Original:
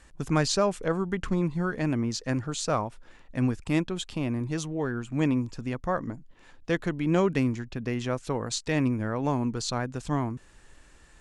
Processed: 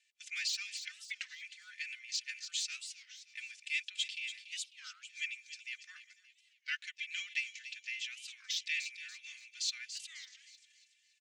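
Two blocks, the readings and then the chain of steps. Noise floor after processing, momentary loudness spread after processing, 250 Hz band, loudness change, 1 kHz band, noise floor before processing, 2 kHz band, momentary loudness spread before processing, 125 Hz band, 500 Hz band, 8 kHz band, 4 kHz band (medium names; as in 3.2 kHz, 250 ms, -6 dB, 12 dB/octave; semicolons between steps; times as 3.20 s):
-73 dBFS, 13 LU, under -40 dB, -11.0 dB, -32.5 dB, -55 dBFS, -2.5 dB, 8 LU, under -40 dB, under -40 dB, -5.0 dB, -0.5 dB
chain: low-pass 8.1 kHz 24 dB/octave; gate -48 dBFS, range -12 dB; de-esser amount 70%; steep high-pass 2.2 kHz 48 dB/octave; treble shelf 3.5 kHz -11.5 dB; comb 3.4 ms, depth 85%; feedback echo behind a high-pass 286 ms, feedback 41%, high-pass 3 kHz, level -8.5 dB; warped record 33 1/3 rpm, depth 250 cents; trim +5.5 dB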